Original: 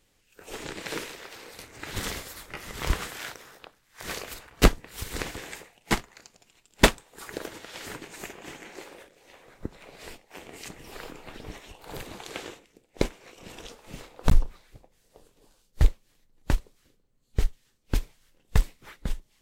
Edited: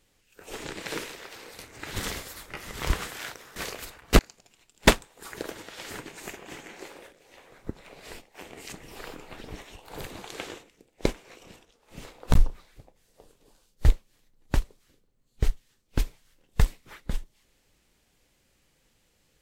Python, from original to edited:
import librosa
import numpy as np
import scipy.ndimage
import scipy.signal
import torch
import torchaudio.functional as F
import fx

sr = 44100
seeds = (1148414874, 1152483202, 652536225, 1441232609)

y = fx.edit(x, sr, fx.cut(start_s=3.56, length_s=0.49),
    fx.cut(start_s=4.68, length_s=1.47),
    fx.fade_down_up(start_s=13.35, length_s=0.65, db=-20.0, fade_s=0.26), tone=tone)